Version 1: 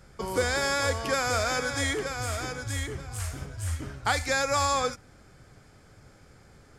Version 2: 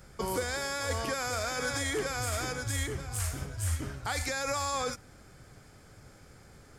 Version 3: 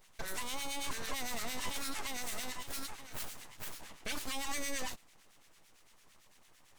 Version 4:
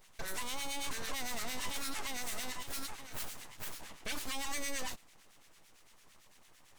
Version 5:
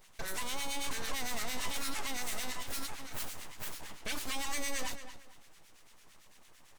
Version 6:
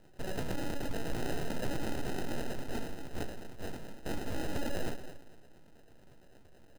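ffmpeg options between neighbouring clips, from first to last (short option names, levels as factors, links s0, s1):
-af "highshelf=f=10000:g=9,alimiter=limit=0.0794:level=0:latency=1:release=35"
-filter_complex "[0:a]highpass=f=450:w=0.5412,highpass=f=450:w=1.3066,aeval=exprs='abs(val(0))':c=same,acrossover=split=1300[s0][s1];[s0]aeval=exprs='val(0)*(1-0.7/2+0.7/2*cos(2*PI*8.9*n/s))':c=same[s2];[s1]aeval=exprs='val(0)*(1-0.7/2-0.7/2*cos(2*PI*8.9*n/s))':c=same[s3];[s2][s3]amix=inputs=2:normalize=0,volume=1.12"
-af "asoftclip=type=tanh:threshold=0.0355,volume=1.19"
-filter_complex "[0:a]asplit=2[s0][s1];[s1]adelay=226,lowpass=f=4400:p=1,volume=0.299,asplit=2[s2][s3];[s3]adelay=226,lowpass=f=4400:p=1,volume=0.25,asplit=2[s4][s5];[s5]adelay=226,lowpass=f=4400:p=1,volume=0.25[s6];[s0][s2][s4][s6]amix=inputs=4:normalize=0,volume=1.19"
-af "acrusher=samples=39:mix=1:aa=0.000001,volume=1.19"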